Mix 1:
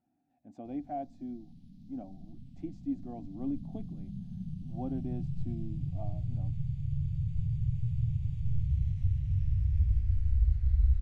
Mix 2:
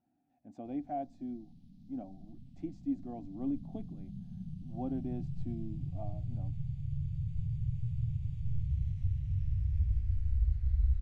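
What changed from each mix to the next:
background -3.5 dB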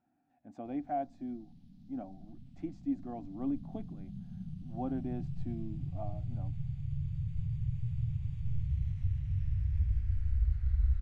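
master: add bell 1400 Hz +9.5 dB 1.4 oct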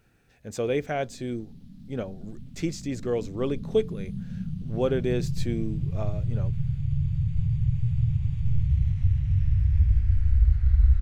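speech: remove double band-pass 450 Hz, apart 1.4 oct; background +10.0 dB

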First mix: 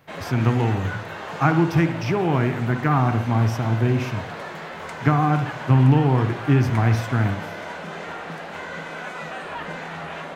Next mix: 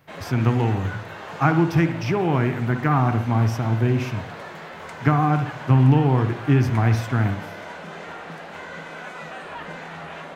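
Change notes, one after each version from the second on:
background -3.0 dB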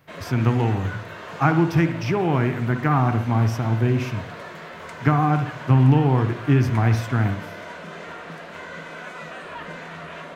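background: add Butterworth band-stop 810 Hz, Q 7.2

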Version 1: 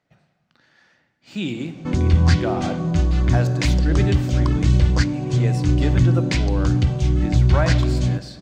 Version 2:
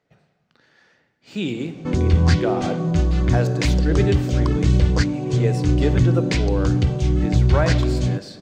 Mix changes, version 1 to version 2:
background: send off; master: add bell 440 Hz +8.5 dB 0.39 oct

